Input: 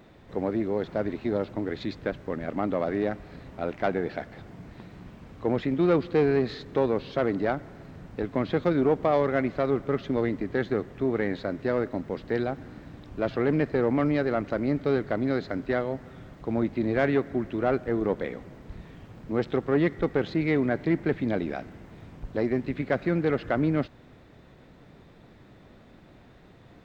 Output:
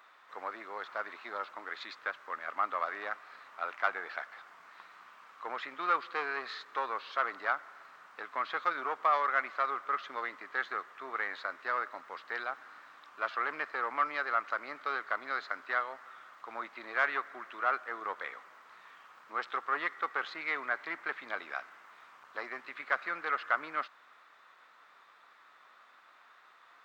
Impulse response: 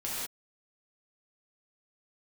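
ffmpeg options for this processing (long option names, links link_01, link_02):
-af "highpass=frequency=1200:width_type=q:width=3.7,volume=-3.5dB"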